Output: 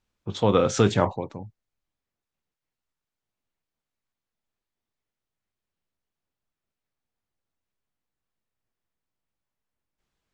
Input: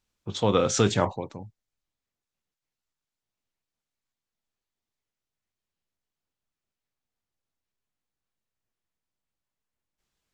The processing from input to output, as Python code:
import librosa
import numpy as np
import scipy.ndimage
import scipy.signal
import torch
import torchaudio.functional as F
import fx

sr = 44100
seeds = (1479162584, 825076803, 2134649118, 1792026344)

y = fx.high_shelf(x, sr, hz=3800.0, db=-9.0)
y = F.gain(torch.from_numpy(y), 2.5).numpy()